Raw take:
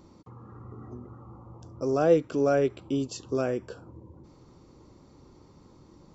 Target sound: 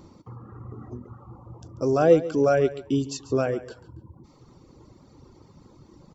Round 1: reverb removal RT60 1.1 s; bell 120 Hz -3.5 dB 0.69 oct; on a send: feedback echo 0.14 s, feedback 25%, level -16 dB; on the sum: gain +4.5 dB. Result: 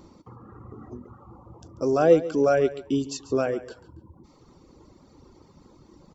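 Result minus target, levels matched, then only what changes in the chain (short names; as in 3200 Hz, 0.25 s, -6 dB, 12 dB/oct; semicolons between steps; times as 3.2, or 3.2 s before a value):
125 Hz band -4.5 dB
change: bell 120 Hz +3.5 dB 0.69 oct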